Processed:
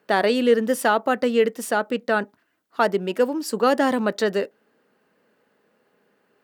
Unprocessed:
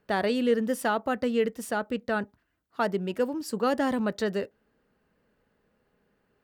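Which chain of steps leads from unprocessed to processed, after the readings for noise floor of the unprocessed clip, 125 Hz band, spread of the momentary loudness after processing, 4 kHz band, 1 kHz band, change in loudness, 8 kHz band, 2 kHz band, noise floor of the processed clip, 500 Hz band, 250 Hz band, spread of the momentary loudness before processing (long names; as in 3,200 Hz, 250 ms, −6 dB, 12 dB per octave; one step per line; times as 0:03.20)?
−73 dBFS, can't be measured, 6 LU, +7.5 dB, +7.5 dB, +6.5 dB, +7.5 dB, +7.5 dB, −68 dBFS, +7.0 dB, +4.0 dB, 6 LU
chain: high-pass filter 250 Hz 12 dB per octave
level +7.5 dB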